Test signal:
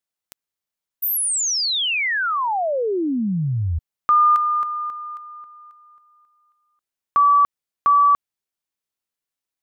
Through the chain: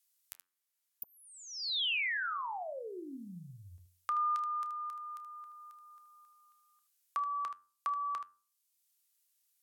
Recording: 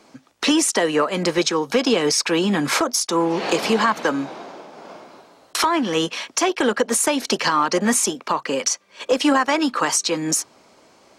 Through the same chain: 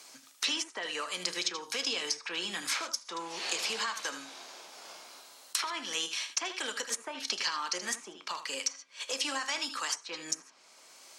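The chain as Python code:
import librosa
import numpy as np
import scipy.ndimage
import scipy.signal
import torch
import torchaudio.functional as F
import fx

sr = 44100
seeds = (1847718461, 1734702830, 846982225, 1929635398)

p1 = np.diff(x, prepend=0.0)
p2 = fx.comb_fb(p1, sr, f0_hz=90.0, decay_s=0.46, harmonics='all', damping=0.6, mix_pct=60)
p3 = p2 + fx.room_early_taps(p2, sr, ms=(30, 77), db=(-16.5, -11.0), dry=0)
p4 = fx.env_lowpass_down(p3, sr, base_hz=1300.0, full_db=-24.5)
p5 = fx.low_shelf(p4, sr, hz=120.0, db=7.5)
p6 = fx.band_squash(p5, sr, depth_pct=40)
y = F.gain(torch.from_numpy(p6), 5.5).numpy()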